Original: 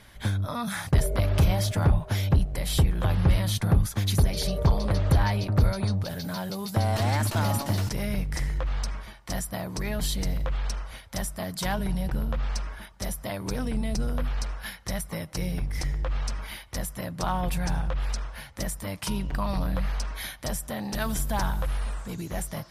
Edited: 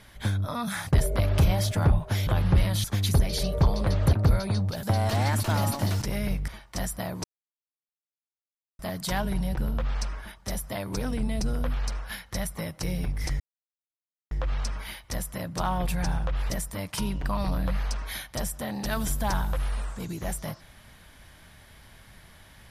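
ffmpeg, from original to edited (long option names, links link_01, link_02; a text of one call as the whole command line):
ffmpeg -i in.wav -filter_complex "[0:a]asplit=10[link_01][link_02][link_03][link_04][link_05][link_06][link_07][link_08][link_09][link_10];[link_01]atrim=end=2.272[link_11];[link_02]atrim=start=2.998:end=3.572[link_12];[link_03]atrim=start=3.878:end=5.172[link_13];[link_04]atrim=start=5.458:end=6.162[link_14];[link_05]atrim=start=6.698:end=8.352[link_15];[link_06]atrim=start=9.018:end=9.78,asetpts=PTS-STARTPTS,afade=type=out:start_time=0.758:duration=0.004:curve=hsin[link_16];[link_07]atrim=start=9.78:end=11.33,asetpts=PTS-STARTPTS,volume=0[link_17];[link_08]atrim=start=11.33:end=15.94,asetpts=PTS-STARTPTS,afade=type=in:duration=0.004:curve=hsin,afade=type=out:start_time=4.606:duration=0.004:curve=hsin,apad=pad_dur=0.91[link_18];[link_09]atrim=start=15.94:end=18.132,asetpts=PTS-STARTPTS,afade=type=in:duration=0.004:curve=hsin[link_19];[link_10]atrim=start=18.588[link_20];[link_11][link_12]acrossfade=duration=0.004:curve1=hsin:curve2=hsin[link_21];[link_21][link_13]acrossfade=duration=0.004:curve1=hsin:curve2=hsin[link_22];[link_22][link_14]acrossfade=duration=0.004:curve1=hsin:curve2=hsin[link_23];[link_23][link_15]acrossfade=duration=0.004:curve1=hsin:curve2=hsin[link_24];[link_16][link_17][link_18][link_19]concat=n=4:v=0:a=1[link_25];[link_24][link_25]acrossfade=duration=0.004:curve1=hsin:curve2=hsin[link_26];[link_26][link_20]acrossfade=duration=0.004:curve1=hsin:curve2=hsin" out.wav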